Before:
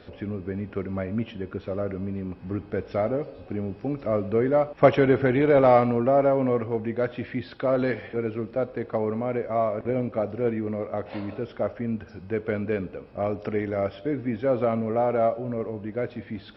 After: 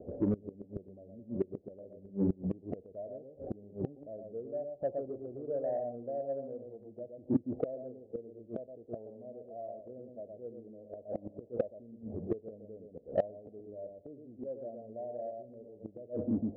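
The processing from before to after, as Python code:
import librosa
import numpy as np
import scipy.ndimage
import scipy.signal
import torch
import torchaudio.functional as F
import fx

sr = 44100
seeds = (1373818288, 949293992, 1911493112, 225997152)

p1 = scipy.signal.sosfilt(scipy.signal.butter(8, 660.0, 'lowpass', fs=sr, output='sos'), x)
p2 = fx.tilt_eq(p1, sr, slope=2.5)
p3 = p2 + fx.echo_single(p2, sr, ms=117, db=-4.0, dry=0)
p4 = fx.gate_flip(p3, sr, shuts_db=-26.0, range_db=-25)
p5 = 10.0 ** (-37.0 / 20.0) * np.tanh(p4 / 10.0 ** (-37.0 / 20.0))
p6 = p4 + (p5 * librosa.db_to_amplitude(-4.5))
p7 = fx.noise_reduce_blind(p6, sr, reduce_db=6)
y = p7 * librosa.db_to_amplitude(8.0)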